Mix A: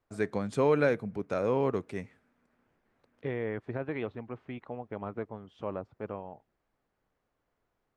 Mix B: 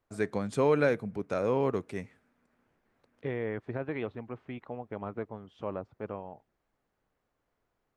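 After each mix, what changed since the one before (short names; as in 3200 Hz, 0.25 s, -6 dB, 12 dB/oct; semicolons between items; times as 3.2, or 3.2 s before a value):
first voice: add high shelf 7700 Hz +5 dB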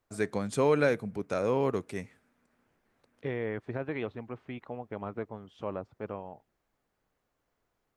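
master: add high shelf 4600 Hz +7.5 dB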